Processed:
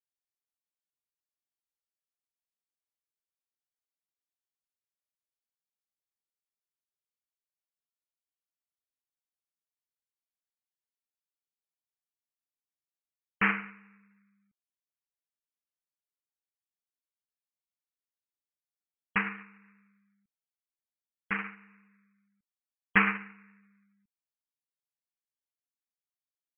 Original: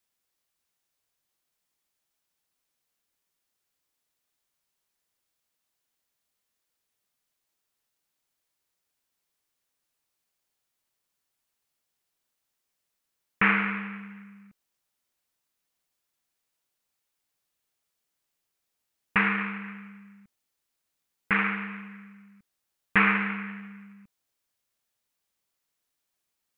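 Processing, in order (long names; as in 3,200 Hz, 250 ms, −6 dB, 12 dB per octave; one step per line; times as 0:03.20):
gate on every frequency bin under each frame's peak −30 dB strong
expander for the loud parts 2.5 to 1, over −32 dBFS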